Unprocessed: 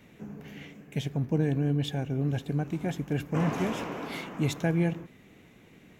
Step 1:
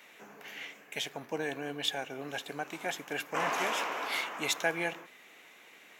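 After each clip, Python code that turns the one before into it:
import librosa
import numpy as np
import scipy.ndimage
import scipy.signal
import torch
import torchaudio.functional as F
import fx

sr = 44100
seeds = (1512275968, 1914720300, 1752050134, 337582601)

y = scipy.signal.sosfilt(scipy.signal.butter(2, 820.0, 'highpass', fs=sr, output='sos'), x)
y = y * librosa.db_to_amplitude(6.5)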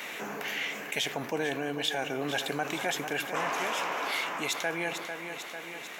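y = fx.rider(x, sr, range_db=5, speed_s=0.5)
y = fx.echo_feedback(y, sr, ms=447, feedback_pct=48, wet_db=-14.5)
y = fx.env_flatten(y, sr, amount_pct=50)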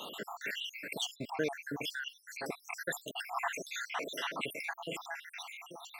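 y = fx.spec_dropout(x, sr, seeds[0], share_pct=76)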